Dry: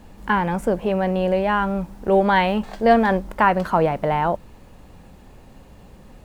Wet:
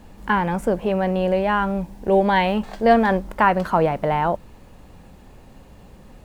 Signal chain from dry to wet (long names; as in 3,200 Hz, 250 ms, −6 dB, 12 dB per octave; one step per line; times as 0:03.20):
0:01.71–0:02.46: parametric band 1,300 Hz −11 dB 0.27 octaves